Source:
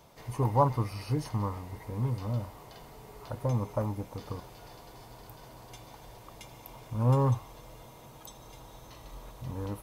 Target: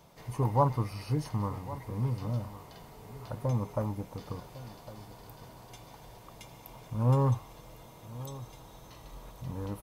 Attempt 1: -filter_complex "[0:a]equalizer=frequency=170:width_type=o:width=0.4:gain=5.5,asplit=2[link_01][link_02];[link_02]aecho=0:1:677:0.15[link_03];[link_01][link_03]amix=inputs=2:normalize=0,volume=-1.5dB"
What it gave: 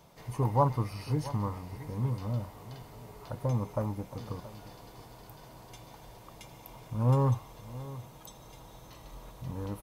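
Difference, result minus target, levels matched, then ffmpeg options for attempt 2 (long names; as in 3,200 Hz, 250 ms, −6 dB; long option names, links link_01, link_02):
echo 429 ms early
-filter_complex "[0:a]equalizer=frequency=170:width_type=o:width=0.4:gain=5.5,asplit=2[link_01][link_02];[link_02]aecho=0:1:1106:0.15[link_03];[link_01][link_03]amix=inputs=2:normalize=0,volume=-1.5dB"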